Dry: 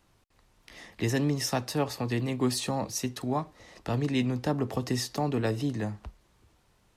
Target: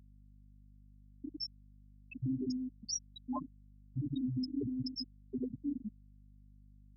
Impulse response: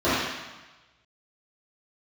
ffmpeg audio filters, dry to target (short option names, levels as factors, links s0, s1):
-filter_complex "[0:a]asoftclip=type=hard:threshold=0.0376,adynamicequalizer=threshold=0.00158:dfrequency=3500:dqfactor=3.2:tfrequency=3500:tqfactor=3.2:attack=5:release=100:ratio=0.375:range=3:mode=cutabove:tftype=bell,aexciter=amount=2.4:drive=9.4:freq=2000,aemphasis=mode=production:type=cd,acompressor=threshold=0.0316:ratio=12,asplit=2[s0][s1];[1:a]atrim=start_sample=2205,lowpass=11000[s2];[s1][s2]afir=irnorm=-1:irlink=0,volume=0.0631[s3];[s0][s3]amix=inputs=2:normalize=0,dynaudnorm=f=280:g=11:m=2.24,afftfilt=real='re*gte(hypot(re,im),0.251)':imag='im*gte(hypot(re,im),0.251)':win_size=1024:overlap=0.75,alimiter=level_in=1.68:limit=0.0631:level=0:latency=1:release=390,volume=0.596,aeval=exprs='val(0)+0.00126*(sin(2*PI*50*n/s)+sin(2*PI*2*50*n/s)/2+sin(2*PI*3*50*n/s)/3+sin(2*PI*4*50*n/s)/4+sin(2*PI*5*50*n/s)/5)':c=same"